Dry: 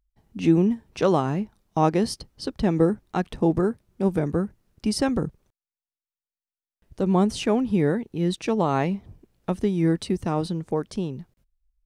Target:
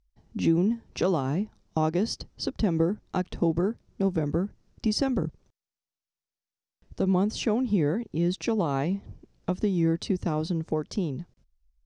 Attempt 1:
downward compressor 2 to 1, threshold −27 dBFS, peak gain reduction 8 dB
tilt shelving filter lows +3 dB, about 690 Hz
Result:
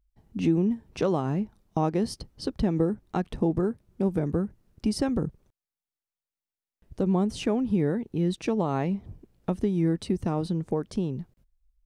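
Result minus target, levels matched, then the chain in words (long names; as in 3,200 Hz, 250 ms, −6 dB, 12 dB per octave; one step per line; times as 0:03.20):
8,000 Hz band −3.0 dB
downward compressor 2 to 1, threshold −27 dBFS, peak gain reduction 8 dB
low-pass with resonance 5,800 Hz, resonance Q 2.2
tilt shelving filter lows +3 dB, about 690 Hz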